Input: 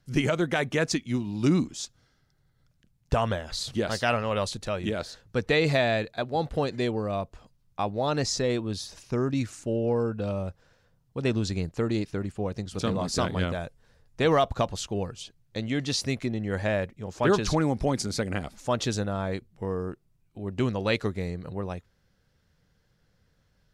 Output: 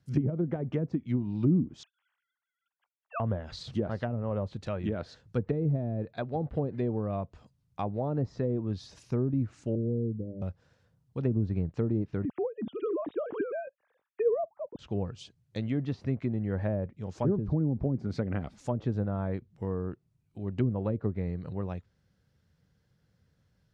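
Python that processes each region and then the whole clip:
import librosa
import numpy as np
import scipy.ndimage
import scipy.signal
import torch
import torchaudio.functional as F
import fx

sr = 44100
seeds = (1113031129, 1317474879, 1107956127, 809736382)

y = fx.chain(x, sr, fx.sine_speech(),
    fx.highpass(hz=900.0, slope=24), at=(1.83, 3.2))
y = fx.chain(y, sr, fx.cheby2_bandstop(low_hz=1000.0, high_hz=7600.0, order=4, stop_db=50),
    fx.hum_notches(base_hz=50, count=5), at=(9.75, 10.42))
y = fx.chain(y, sr, fx.sine_speech(),
    fx.low_shelf(hz=430.0, db=11.0), at=(12.25, 14.79))
y = fx.env_lowpass_down(y, sr, base_hz=350.0, full_db=-20.5)
y = scipy.signal.sosfilt(scipy.signal.butter(2, 82.0, 'highpass', fs=sr, output='sos'), y)
y = fx.low_shelf(y, sr, hz=220.0, db=10.0)
y = y * librosa.db_to_amplitude(-6.0)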